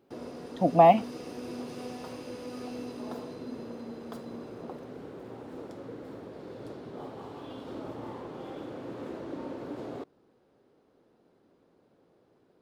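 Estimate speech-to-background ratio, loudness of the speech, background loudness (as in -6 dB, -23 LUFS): 19.5 dB, -22.0 LUFS, -41.5 LUFS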